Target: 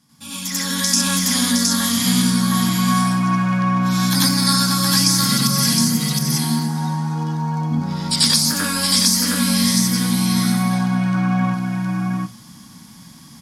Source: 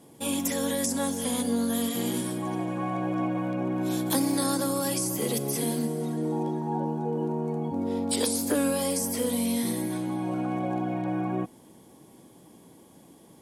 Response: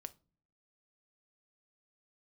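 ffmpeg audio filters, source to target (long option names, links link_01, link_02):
-filter_complex "[0:a]asplit=2[link_01][link_02];[link_02]aecho=0:1:715:0.708[link_03];[link_01][link_03]amix=inputs=2:normalize=0,dynaudnorm=framelen=350:gausssize=3:maxgain=10dB,firequalizer=gain_entry='entry(240,0);entry(360,-25);entry(1200,3);entry(3000,-1);entry(5000,11);entry(8100,-2)':delay=0.05:min_phase=1,asplit=2[link_04][link_05];[1:a]atrim=start_sample=2205,adelay=92[link_06];[link_05][link_06]afir=irnorm=-1:irlink=0,volume=9.5dB[link_07];[link_04][link_07]amix=inputs=2:normalize=0,volume=-4dB"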